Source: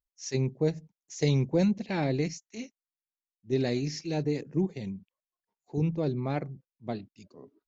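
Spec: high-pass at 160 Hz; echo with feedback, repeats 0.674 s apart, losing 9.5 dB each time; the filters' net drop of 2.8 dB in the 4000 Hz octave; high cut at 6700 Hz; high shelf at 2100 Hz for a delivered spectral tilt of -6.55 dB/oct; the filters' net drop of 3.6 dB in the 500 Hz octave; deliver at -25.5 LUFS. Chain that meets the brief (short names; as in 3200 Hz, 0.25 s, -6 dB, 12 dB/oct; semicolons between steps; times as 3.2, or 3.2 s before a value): HPF 160 Hz; LPF 6700 Hz; bell 500 Hz -4.5 dB; high shelf 2100 Hz +3.5 dB; bell 4000 Hz -6 dB; feedback echo 0.674 s, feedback 33%, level -9.5 dB; gain +8.5 dB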